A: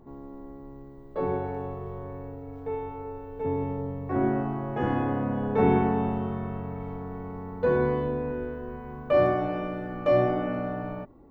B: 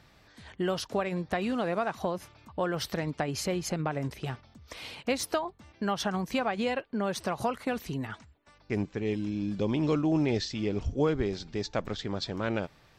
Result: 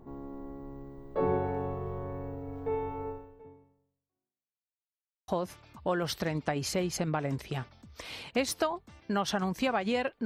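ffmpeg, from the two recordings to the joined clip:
-filter_complex "[0:a]apad=whole_dur=10.25,atrim=end=10.25,asplit=2[s0][s1];[s0]atrim=end=4.76,asetpts=PTS-STARTPTS,afade=t=out:st=3.09:d=1.67:c=exp[s2];[s1]atrim=start=4.76:end=5.28,asetpts=PTS-STARTPTS,volume=0[s3];[1:a]atrim=start=2:end=6.97,asetpts=PTS-STARTPTS,afade=t=in:d=0.004:c=hsin[s4];[s2][s3][s4]concat=n=3:v=0:a=1"

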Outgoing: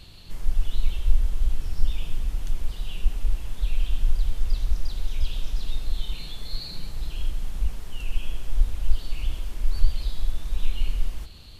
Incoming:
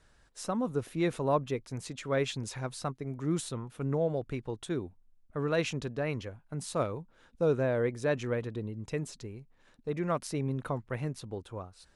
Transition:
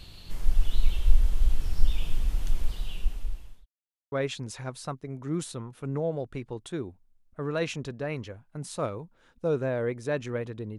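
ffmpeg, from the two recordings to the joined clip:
-filter_complex "[0:a]apad=whole_dur=10.78,atrim=end=10.78,asplit=2[s0][s1];[s0]atrim=end=3.66,asetpts=PTS-STARTPTS,afade=t=out:st=2.61:d=1.05[s2];[s1]atrim=start=3.66:end=4.12,asetpts=PTS-STARTPTS,volume=0[s3];[1:a]atrim=start=2.09:end=8.75,asetpts=PTS-STARTPTS,afade=t=in:d=0.004:c=hsin[s4];[s2][s3][s4]concat=n=3:v=0:a=1"

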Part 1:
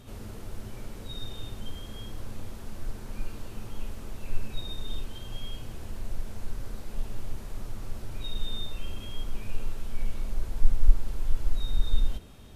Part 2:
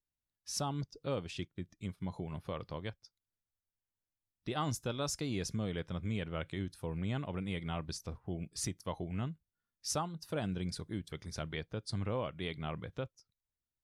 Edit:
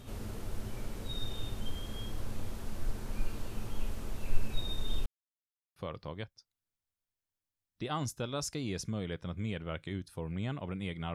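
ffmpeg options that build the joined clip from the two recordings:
-filter_complex "[0:a]apad=whole_dur=11.14,atrim=end=11.14,asplit=2[s0][s1];[s0]atrim=end=5.06,asetpts=PTS-STARTPTS,afade=t=out:st=5.056:d=0.004:c=hsin[s2];[s1]atrim=start=5.06:end=5.76,asetpts=PTS-STARTPTS,volume=0[s3];[1:a]atrim=start=2.42:end=7.8,asetpts=PTS-STARTPTS,afade=t=in:d=0.004:c=hsin[s4];[s2][s3][s4]concat=n=3:v=0:a=1"

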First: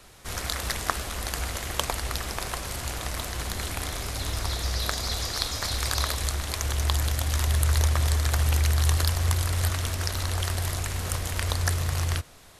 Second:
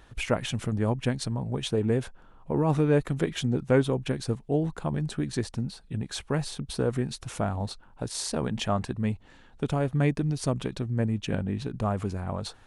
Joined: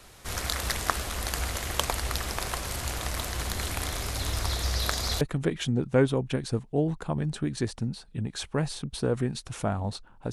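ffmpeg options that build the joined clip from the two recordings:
-filter_complex "[0:a]apad=whole_dur=10.32,atrim=end=10.32,atrim=end=5.212[s0];[1:a]atrim=start=2.968:end=8.08[s1];[s0][s1]acrossfade=d=0.004:c1=hsin:c2=hsin"

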